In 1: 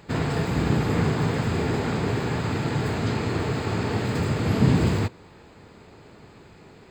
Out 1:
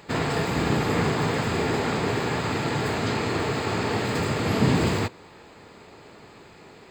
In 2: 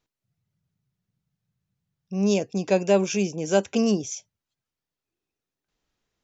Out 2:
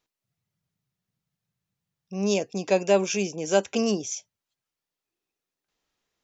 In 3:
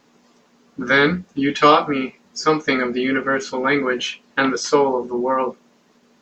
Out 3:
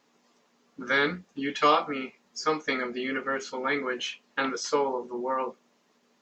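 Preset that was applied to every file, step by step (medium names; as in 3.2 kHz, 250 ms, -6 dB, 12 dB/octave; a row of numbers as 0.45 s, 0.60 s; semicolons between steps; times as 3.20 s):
bass shelf 240 Hz -10 dB; band-stop 1.5 kHz, Q 27; peak normalisation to -9 dBFS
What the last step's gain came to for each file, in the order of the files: +4.0 dB, +1.5 dB, -8.0 dB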